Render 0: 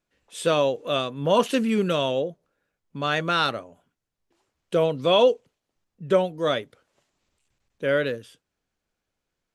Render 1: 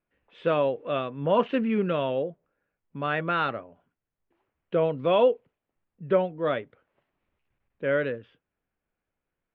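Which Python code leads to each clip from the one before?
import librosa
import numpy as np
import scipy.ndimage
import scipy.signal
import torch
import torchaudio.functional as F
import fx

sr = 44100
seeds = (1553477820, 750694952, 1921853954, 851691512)

y = scipy.signal.sosfilt(scipy.signal.butter(4, 2600.0, 'lowpass', fs=sr, output='sos'), x)
y = y * 10.0 ** (-2.5 / 20.0)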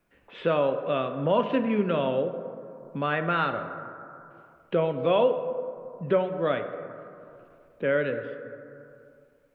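y = fx.rev_plate(x, sr, seeds[0], rt60_s=1.8, hf_ratio=0.4, predelay_ms=0, drr_db=8.0)
y = fx.band_squash(y, sr, depth_pct=40)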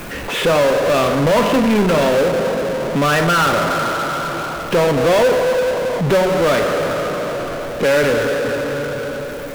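y = fx.power_curve(x, sr, exponent=0.35)
y = y * 10.0 ** (3.0 / 20.0)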